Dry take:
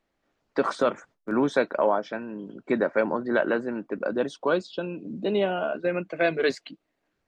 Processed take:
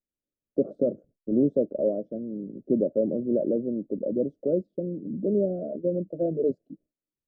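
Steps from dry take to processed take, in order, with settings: elliptic low-pass 590 Hz, stop band 40 dB; gate with hold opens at -55 dBFS; low shelf 420 Hz +8.5 dB; gain -3.5 dB

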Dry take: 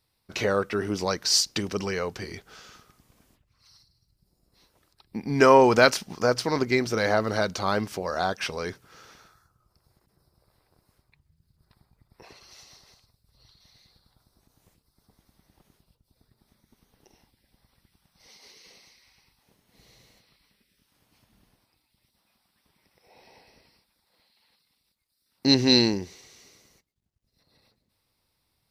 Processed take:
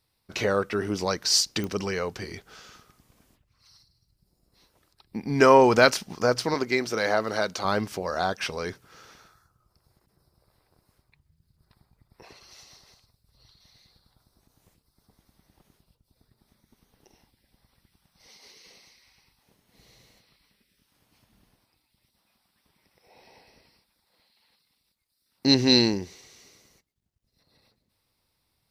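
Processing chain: 6.54–7.65 HPF 300 Hz 6 dB/oct; pops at 1.64, -19 dBFS

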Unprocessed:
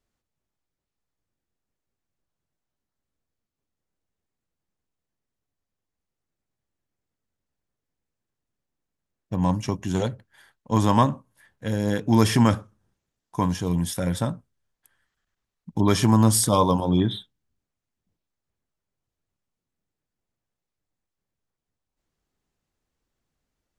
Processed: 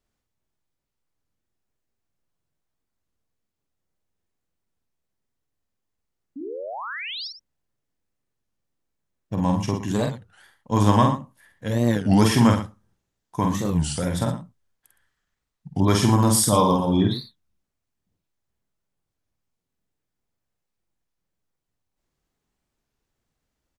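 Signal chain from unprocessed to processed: painted sound rise, 6.36–7.28, 230–5700 Hz -34 dBFS; tapped delay 48/115/116 ms -4/-20/-12.5 dB; record warp 33 1/3 rpm, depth 250 cents

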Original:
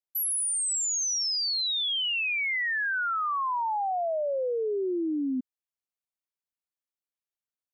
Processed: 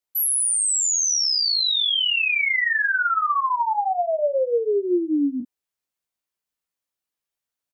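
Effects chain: 3.39–4.19 low shelf 330 Hz -7 dB; early reflections 17 ms -3.5 dB, 42 ms -9 dB; gain +5 dB

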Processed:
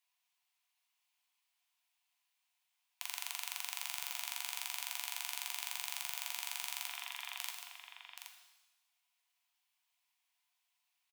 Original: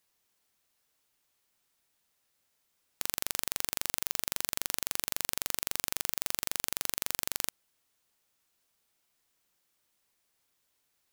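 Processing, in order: 6.88–7.39 inverted band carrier 3700 Hz; rippled Chebyshev high-pass 690 Hz, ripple 9 dB; on a send: echo 0.775 s -8 dB; on the sum: shimmer reverb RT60 1 s, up +7 st, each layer -8 dB, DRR 3.5 dB; gain -2 dB

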